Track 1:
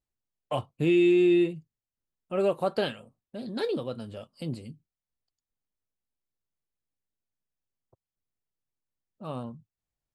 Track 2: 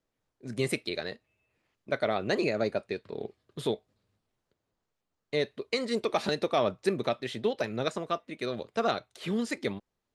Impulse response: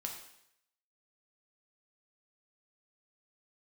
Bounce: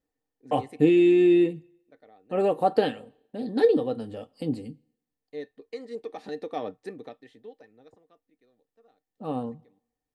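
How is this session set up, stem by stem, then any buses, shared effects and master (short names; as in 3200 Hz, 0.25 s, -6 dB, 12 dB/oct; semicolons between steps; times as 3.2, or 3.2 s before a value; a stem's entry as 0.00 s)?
-2.5 dB, 0.00 s, send -18.5 dB, dry
2.03 s -8 dB -> 2.69 s -18 dB -> 6.13 s -18 dB -> 6.75 s -10 dB -> 8.16 s -10 dB -> 8.76 s -19.5 dB, 0.00 s, no send, auto duck -24 dB, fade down 1.35 s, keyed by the first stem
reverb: on, RT60 0.75 s, pre-delay 4 ms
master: small resonant body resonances 290/460/760/1800 Hz, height 15 dB, ringing for 60 ms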